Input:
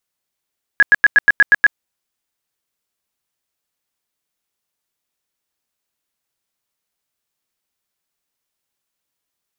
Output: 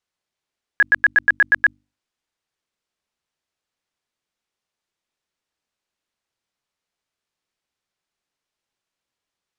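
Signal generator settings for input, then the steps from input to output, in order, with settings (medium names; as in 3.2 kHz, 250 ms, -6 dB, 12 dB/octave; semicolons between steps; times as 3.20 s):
tone bursts 1.67 kHz, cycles 43, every 0.12 s, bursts 8, -5 dBFS
distance through air 70 m; hum notches 50/100/150/200/250/300 Hz; peak limiter -8.5 dBFS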